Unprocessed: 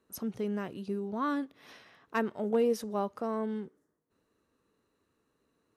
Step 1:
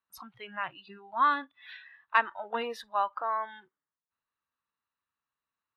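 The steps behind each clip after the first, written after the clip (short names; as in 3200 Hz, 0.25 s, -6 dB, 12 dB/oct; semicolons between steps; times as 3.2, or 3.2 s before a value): spectral noise reduction 20 dB; EQ curve 140 Hz 0 dB, 400 Hz -11 dB, 950 Hz +13 dB, 3700 Hz +12 dB, 6100 Hz -6 dB; gain -2.5 dB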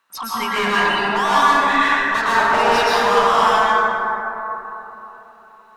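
overdrive pedal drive 35 dB, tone 3400 Hz, clips at -10 dBFS; soft clip -16 dBFS, distortion -19 dB; plate-style reverb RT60 3.6 s, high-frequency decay 0.3×, pre-delay 0.1 s, DRR -9.5 dB; gain -3.5 dB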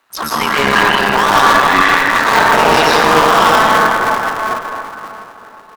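cycle switcher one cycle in 3, muted; echo 0.706 s -18 dB; in parallel at -5.5 dB: sine folder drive 7 dB, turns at -3 dBFS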